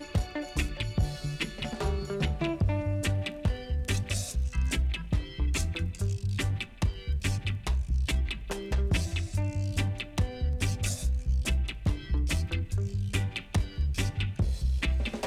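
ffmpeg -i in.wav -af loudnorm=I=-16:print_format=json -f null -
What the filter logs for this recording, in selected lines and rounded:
"input_i" : "-31.1",
"input_tp" : "-14.0",
"input_lra" : "0.5",
"input_thresh" : "-41.1",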